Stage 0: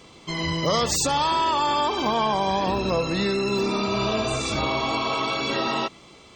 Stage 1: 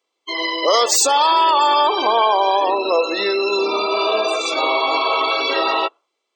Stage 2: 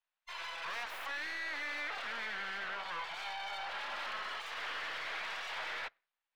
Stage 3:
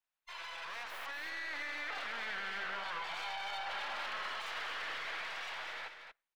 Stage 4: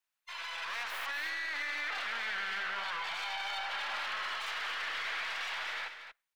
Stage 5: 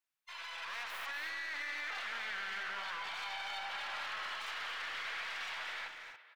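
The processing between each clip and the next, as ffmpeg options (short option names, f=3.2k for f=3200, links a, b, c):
-af "highpass=f=370:w=0.5412,highpass=f=370:w=1.3066,afftdn=nr=34:nf=-31,highshelf=f=11k:g=6.5,volume=8dB"
-filter_complex "[0:a]aeval=exprs='abs(val(0))':c=same,aeval=exprs='(tanh(3.98*val(0)+0.8)-tanh(0.8))/3.98':c=same,acrossover=split=590 3600:gain=0.0708 1 0.0891[a][b][c];[a][b][c]amix=inputs=3:normalize=0,volume=-3.5dB"
-af "alimiter=level_in=10dB:limit=-24dB:level=0:latency=1:release=24,volume=-10dB,dynaudnorm=f=250:g=11:m=4dB,aecho=1:1:233:0.398,volume=-2.5dB"
-filter_complex "[0:a]acrossover=split=110|970[a][b][c];[c]acontrast=70[d];[a][b][d]amix=inputs=3:normalize=0,alimiter=level_in=5dB:limit=-24dB:level=0:latency=1:release=35,volume=-5dB,dynaudnorm=f=120:g=9:m=3dB,volume=-2.5dB"
-filter_complex "[0:a]asplit=2[a][b];[b]adelay=280,highpass=300,lowpass=3.4k,asoftclip=type=hard:threshold=-37dB,volume=-7dB[c];[a][c]amix=inputs=2:normalize=0,volume=-4.5dB"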